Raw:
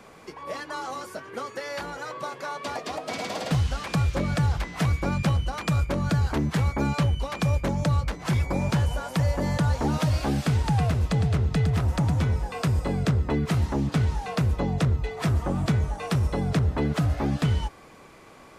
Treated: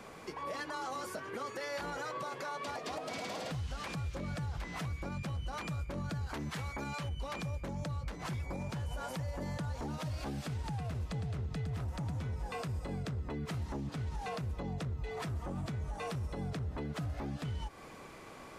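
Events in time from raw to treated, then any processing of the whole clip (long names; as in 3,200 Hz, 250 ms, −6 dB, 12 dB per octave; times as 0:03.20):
0:06.29–0:07.09: tilt shelving filter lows −4.5 dB, about 630 Hz
whole clip: downward compressor, threshold −31 dBFS; brickwall limiter −30 dBFS; level −1 dB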